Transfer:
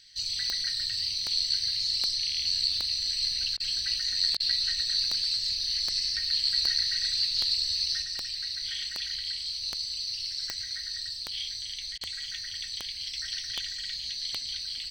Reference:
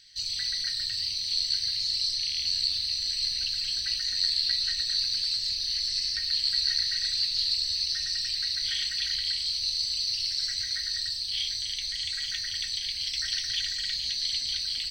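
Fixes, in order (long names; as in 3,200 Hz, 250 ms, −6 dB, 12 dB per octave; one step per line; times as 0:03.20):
click removal
repair the gap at 0:03.57/0:04.37/0:11.98, 29 ms
level correction +4.5 dB, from 0:08.02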